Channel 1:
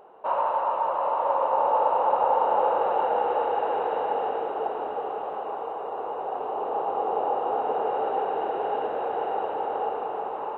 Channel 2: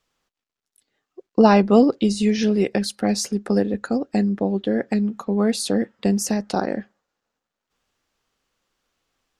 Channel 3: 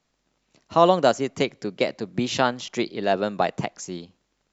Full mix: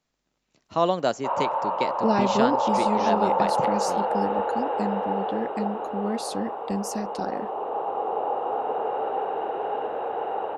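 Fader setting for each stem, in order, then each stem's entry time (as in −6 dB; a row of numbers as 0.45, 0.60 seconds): −1.0, −9.0, −5.5 decibels; 1.00, 0.65, 0.00 seconds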